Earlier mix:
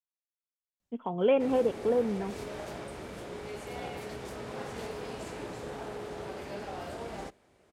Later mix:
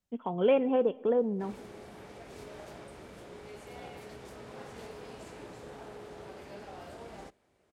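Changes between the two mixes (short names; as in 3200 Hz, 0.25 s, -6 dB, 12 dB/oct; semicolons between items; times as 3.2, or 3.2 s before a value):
speech: entry -0.80 s; background -6.5 dB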